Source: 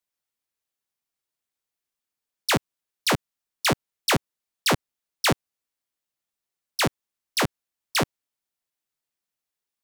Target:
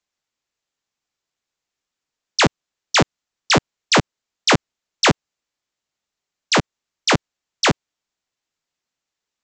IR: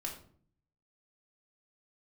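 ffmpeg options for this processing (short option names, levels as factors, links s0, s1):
-af "aresample=16000,aresample=44100,asetrate=45938,aresample=44100,volume=2.24"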